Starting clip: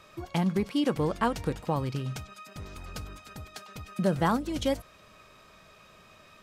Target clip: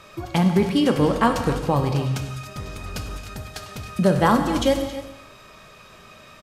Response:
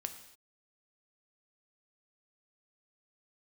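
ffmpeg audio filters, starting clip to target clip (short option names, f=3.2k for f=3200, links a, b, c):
-filter_complex "[0:a]aecho=1:1:272:0.188[a];[1:a]atrim=start_sample=2205,afade=t=out:st=0.24:d=0.01,atrim=end_sample=11025,asetrate=27783,aresample=44100[b];[a][b]afir=irnorm=-1:irlink=0,volume=7.5dB"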